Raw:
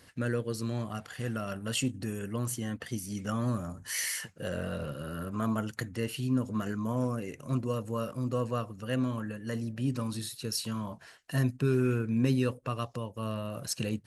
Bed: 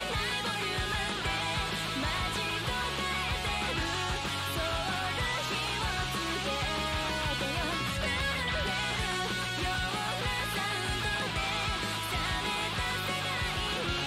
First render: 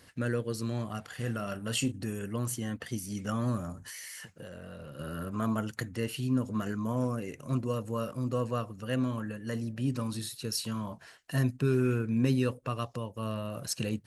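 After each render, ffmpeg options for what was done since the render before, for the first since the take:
-filter_complex "[0:a]asettb=1/sr,asplit=3[a][b][c];[a]atrim=end=1.124[d];[b]atrim=start=1.12:end=1.92,asetpts=PTS-STARTPTS,afade=t=in:d=0.004:c=qsin,afade=t=out:st=0.796:d=0.004:c=qsin,asplit=2[e][f];[f]adelay=34,volume=-11.5dB[g];[e][g]amix=inputs=2:normalize=0,atrim=end_sample=35280[h];[c]atrim=start=1.916[i];[d][h]acrossfade=d=0.004:c1=hsin:c2=qsin[j];[j][i]acrossfade=d=0.004:c1=qsin:c2=hsin,asettb=1/sr,asplit=3[k][l][m];[k]atrim=end=3.824[n];[l]atrim=start=3.82:end=4.99,asetpts=PTS-STARTPTS,afade=t=in:d=0.004:c=qsin,afade=t=out:st=1.166:d=0.004:c=qsin,acompressor=threshold=-40dB:ratio=10:attack=3.2:release=140:knee=1:detection=peak[o];[m]atrim=start=4.986[p];[n][o]acrossfade=d=0.004:c1=hsin:c2=qsin[q];[q][p]acrossfade=d=0.004:c1=qsin:c2=hsin"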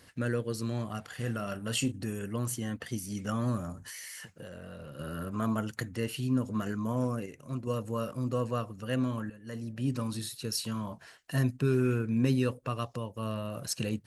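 -filter_complex "[0:a]asplit=4[a][b][c][d];[a]atrim=end=7.262[e];[b]atrim=start=7.258:end=7.672,asetpts=PTS-STARTPTS,volume=-5.5dB[f];[c]atrim=start=7.668:end=9.3,asetpts=PTS-STARTPTS,afade=t=out:st=1.628:d=0.004:c=hsin:silence=0.223872[g];[d]atrim=start=9.3,asetpts=PTS-STARTPTS,afade=t=in:d=0.59:silence=0.223872[h];[e][f]acrossfade=d=0.004:c1=hsin:c2=hsin[i];[g][h]concat=n=2:v=0:a=1[j];[i][j]acrossfade=d=0.004:c1=hsin:c2=hsin"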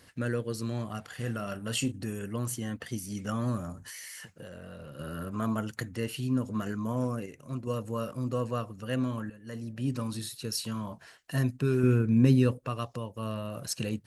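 -filter_complex "[0:a]asettb=1/sr,asplit=3[a][b][c];[a]atrim=end=11.834[d];[b]atrim=start=11.83:end=12.58,asetpts=PTS-STARTPTS,afade=t=in:d=0.004:c=qsin,afade=t=out:st=0.746:d=0.004:c=qsin,lowshelf=f=380:g=7[e];[c]atrim=start=12.576[f];[d][e]acrossfade=d=0.004:c1=hsin:c2=qsin[g];[g][f]acrossfade=d=0.004:c1=qsin:c2=hsin"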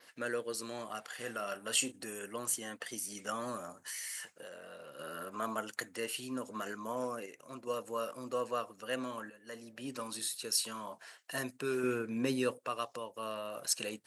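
-af "highpass=470,adynamicequalizer=threshold=0.00141:dfrequency=8600:dqfactor=2:tfrequency=8600:tqfactor=2:attack=5:release=100:ratio=0.375:range=3:mode=boostabove:tftype=bell"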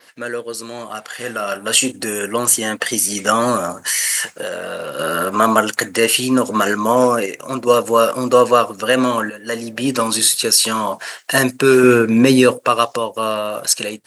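-af "dynaudnorm=f=690:g=5:m=13dB,alimiter=level_in=11dB:limit=-1dB:release=50:level=0:latency=1"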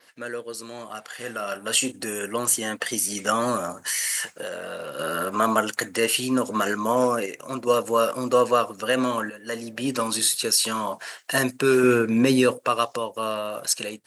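-af "volume=-7.5dB"

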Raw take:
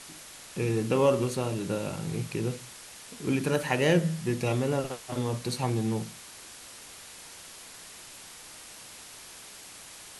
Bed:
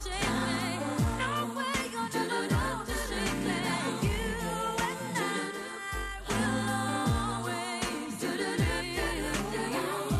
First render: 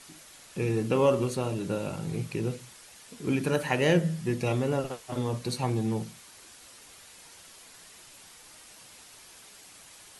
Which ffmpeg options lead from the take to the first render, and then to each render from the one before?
-af "afftdn=nr=6:nf=-47"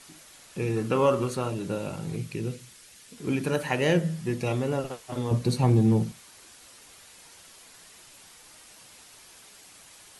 -filter_complex "[0:a]asettb=1/sr,asplit=3[a][b][c];[a]atrim=end=0.764[d];[b]atrim=start=0.76:end=1.5,asetpts=PTS-STARTPTS,afade=t=in:d=0.004:c=qsin,afade=t=out:st=0.736:d=0.004:c=qsin,equalizer=f=1.3k:t=o:w=0.65:g=7[e];[c]atrim=start=1.496[f];[d][e]acrossfade=d=0.004:c1=hsin:c2=qsin[g];[g][f]acrossfade=d=0.004:c1=qsin:c2=hsin,asettb=1/sr,asplit=3[h][i][j];[h]atrim=end=2.164[k];[i]atrim=start=2.16:end=3.18,asetpts=PTS-STARTPTS,afade=t=in:d=0.004:c=qsin,afade=t=out:st=1.016:d=0.004:c=qsin,equalizer=f=820:t=o:w=1.5:g=-7[l];[j]atrim=start=3.176[m];[k][l]acrossfade=d=0.004:c1=hsin:c2=qsin[n];[n][m]acrossfade=d=0.004:c1=qsin:c2=hsin,asettb=1/sr,asplit=3[o][p][q];[o]atrim=end=5.314[r];[p]atrim=start=5.31:end=6.12,asetpts=PTS-STARTPTS,afade=t=in:d=0.004:c=qsin,afade=t=out:st=0.806:d=0.004:c=qsin,lowshelf=f=470:g=10[s];[q]atrim=start=6.116[t];[r][s]acrossfade=d=0.004:c1=hsin:c2=qsin[u];[u][t]acrossfade=d=0.004:c1=qsin:c2=hsin"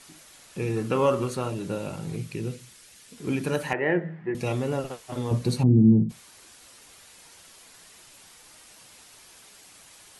-filter_complex "[0:a]asettb=1/sr,asplit=3[a][b][c];[a]atrim=end=3.734[d];[b]atrim=start=3.73:end=4.35,asetpts=PTS-STARTPTS,afade=t=in:d=0.004:c=qsin,afade=t=out:st=0.616:d=0.004:c=qsin,highpass=220,equalizer=f=240:t=q:w=4:g=-7,equalizer=f=350:t=q:w=4:g=4,equalizer=f=530:t=q:w=4:g=-4,equalizer=f=800:t=q:w=4:g=3,equalizer=f=1.2k:t=q:w=4:g=-4,equalizer=f=1.9k:t=q:w=4:g=7,lowpass=f=2k:w=0.5412,lowpass=f=2k:w=1.3066[e];[c]atrim=start=4.346[f];[d][e]acrossfade=d=0.004:c1=hsin:c2=qsin[g];[g][f]acrossfade=d=0.004:c1=qsin:c2=hsin,asplit=3[h][i][j];[h]afade=t=out:st=5.62:d=0.02[k];[i]lowpass=f=260:t=q:w=2.2,afade=t=in:st=5.62:d=0.02,afade=t=out:st=6.09:d=0.02[l];[j]afade=t=in:st=6.09:d=0.02[m];[k][l][m]amix=inputs=3:normalize=0"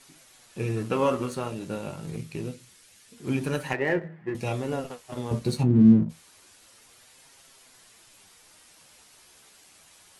-filter_complex "[0:a]flanger=delay=7.4:depth=6.3:regen=46:speed=0.27:shape=sinusoidal,asplit=2[a][b];[b]aeval=exprs='sgn(val(0))*max(abs(val(0))-0.0141,0)':c=same,volume=-5dB[c];[a][c]amix=inputs=2:normalize=0"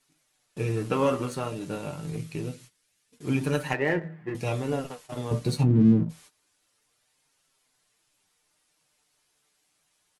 -af "agate=range=-17dB:threshold=-49dB:ratio=16:detection=peak,aecho=1:1:6.7:0.35"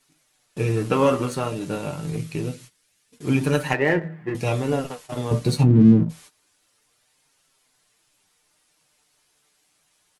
-af "volume=5.5dB"

